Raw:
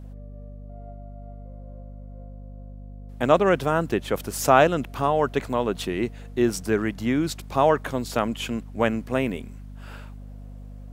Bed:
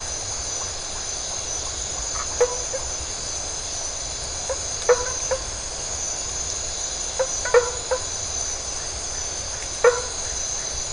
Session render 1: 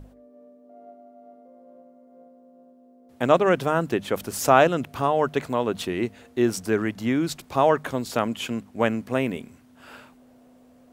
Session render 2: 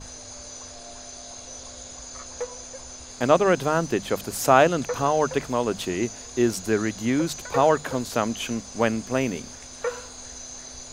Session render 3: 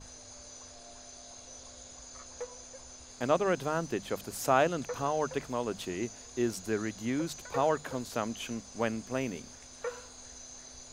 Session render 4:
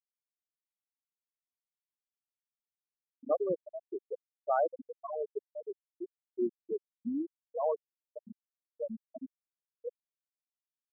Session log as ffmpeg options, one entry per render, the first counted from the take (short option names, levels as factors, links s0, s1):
-af "bandreject=f=50:t=h:w=6,bandreject=f=100:t=h:w=6,bandreject=f=150:t=h:w=6,bandreject=f=200:t=h:w=6"
-filter_complex "[1:a]volume=0.237[s0];[0:a][s0]amix=inputs=2:normalize=0"
-af "volume=0.355"
-af "afftfilt=real='re*gte(hypot(re,im),0.224)':imag='im*gte(hypot(re,im),0.224)':win_size=1024:overlap=0.75,equalizer=f=3300:t=o:w=1.7:g=-14"